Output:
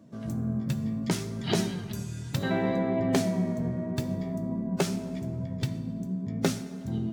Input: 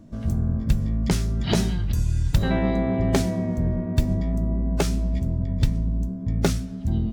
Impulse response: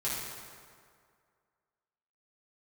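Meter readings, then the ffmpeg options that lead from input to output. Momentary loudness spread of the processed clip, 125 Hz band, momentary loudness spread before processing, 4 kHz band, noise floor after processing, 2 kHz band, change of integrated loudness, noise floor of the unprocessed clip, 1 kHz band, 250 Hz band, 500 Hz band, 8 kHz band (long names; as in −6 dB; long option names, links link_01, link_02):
8 LU, −8.5 dB, 4 LU, −3.5 dB, −38 dBFS, −3.0 dB, −6.0 dB, −32 dBFS, −3.0 dB, −3.5 dB, −2.5 dB, −3.5 dB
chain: -filter_complex "[0:a]highpass=frequency=120:width=0.5412,highpass=frequency=120:width=1.3066,flanger=delay=1.7:depth=3.8:regen=63:speed=0.73:shape=triangular,asplit=2[link_01][link_02];[1:a]atrim=start_sample=2205[link_03];[link_02][link_03]afir=irnorm=-1:irlink=0,volume=-16.5dB[link_04];[link_01][link_04]amix=inputs=2:normalize=0"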